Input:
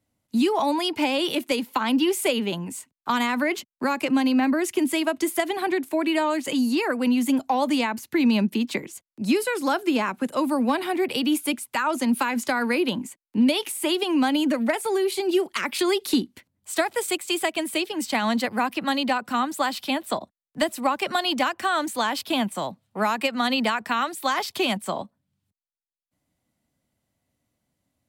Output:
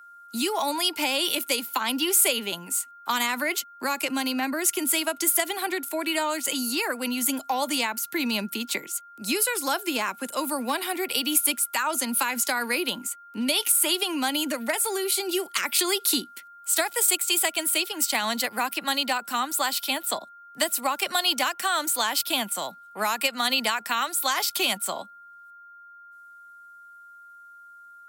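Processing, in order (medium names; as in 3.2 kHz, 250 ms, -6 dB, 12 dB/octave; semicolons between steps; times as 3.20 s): whistle 1.4 kHz -44 dBFS; RIAA curve recording; trim -2.5 dB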